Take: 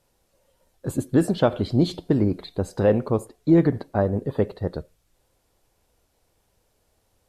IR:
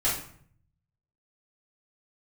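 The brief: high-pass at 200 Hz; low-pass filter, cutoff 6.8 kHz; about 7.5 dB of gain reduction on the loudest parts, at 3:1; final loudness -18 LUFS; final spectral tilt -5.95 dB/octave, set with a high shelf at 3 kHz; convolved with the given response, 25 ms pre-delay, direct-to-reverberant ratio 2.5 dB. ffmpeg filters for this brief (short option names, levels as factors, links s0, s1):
-filter_complex "[0:a]highpass=200,lowpass=6800,highshelf=f=3000:g=6,acompressor=threshold=0.0708:ratio=3,asplit=2[s0][s1];[1:a]atrim=start_sample=2205,adelay=25[s2];[s1][s2]afir=irnorm=-1:irlink=0,volume=0.224[s3];[s0][s3]amix=inputs=2:normalize=0,volume=2.99"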